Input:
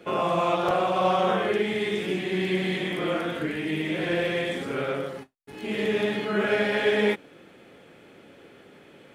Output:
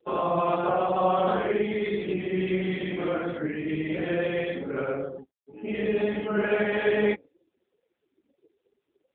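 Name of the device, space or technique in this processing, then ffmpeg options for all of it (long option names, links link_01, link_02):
mobile call with aggressive noise cancelling: -af "highpass=110,afftdn=noise_reduction=35:noise_floor=-35" -ar 8000 -c:a libopencore_amrnb -b:a 7950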